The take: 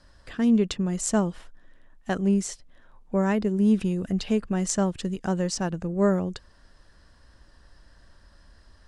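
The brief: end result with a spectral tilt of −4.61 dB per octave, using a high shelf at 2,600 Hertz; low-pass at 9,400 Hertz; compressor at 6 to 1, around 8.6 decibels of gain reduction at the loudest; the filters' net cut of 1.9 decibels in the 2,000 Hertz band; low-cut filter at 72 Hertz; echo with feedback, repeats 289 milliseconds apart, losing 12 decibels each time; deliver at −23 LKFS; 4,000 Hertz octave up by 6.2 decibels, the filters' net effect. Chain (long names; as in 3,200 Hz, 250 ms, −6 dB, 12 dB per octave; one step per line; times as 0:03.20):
high-pass filter 72 Hz
low-pass filter 9,400 Hz
parametric band 2,000 Hz −5.5 dB
high-shelf EQ 2,600 Hz +4 dB
parametric band 4,000 Hz +6 dB
downward compressor 6 to 1, threshold −26 dBFS
repeating echo 289 ms, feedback 25%, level −12 dB
level +8 dB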